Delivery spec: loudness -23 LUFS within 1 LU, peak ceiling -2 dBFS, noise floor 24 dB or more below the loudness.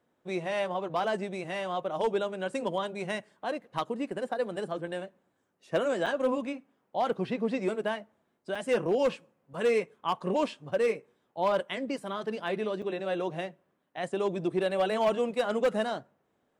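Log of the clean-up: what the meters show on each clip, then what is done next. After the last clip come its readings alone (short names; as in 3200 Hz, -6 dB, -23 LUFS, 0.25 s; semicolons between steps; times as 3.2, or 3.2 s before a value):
clipped 0.6%; flat tops at -20.0 dBFS; dropouts 3; longest dropout 4.9 ms; loudness -31.5 LUFS; peak -20.0 dBFS; loudness target -23.0 LUFS
-> clip repair -20 dBFS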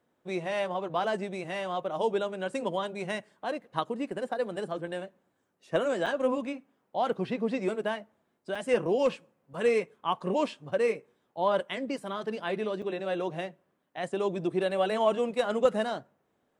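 clipped 0.0%; dropouts 3; longest dropout 4.9 ms
-> interpolate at 6.06/8.55/12.82, 4.9 ms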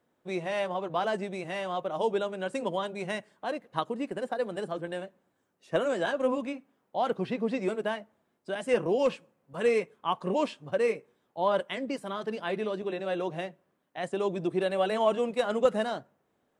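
dropouts 0; loudness -31.0 LUFS; peak -11.0 dBFS; loudness target -23.0 LUFS
-> gain +8 dB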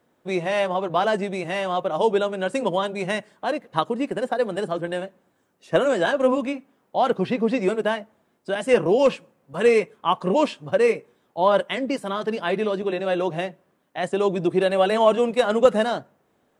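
loudness -23.0 LUFS; peak -3.0 dBFS; noise floor -67 dBFS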